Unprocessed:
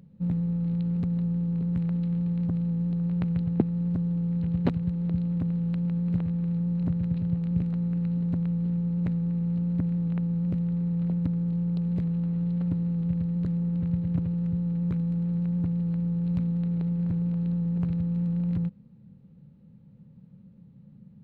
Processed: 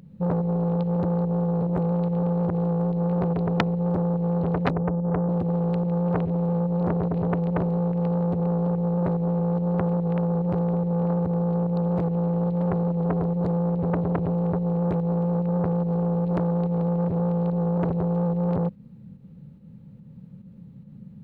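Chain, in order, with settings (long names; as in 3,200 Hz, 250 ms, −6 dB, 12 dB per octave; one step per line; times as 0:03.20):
in parallel at +2 dB: fake sidechain pumping 144 BPM, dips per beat 1, −16 dB, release 121 ms
0:04.71–0:05.29: on the sum: elliptic low-pass filter 550 Hz
saturating transformer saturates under 1,700 Hz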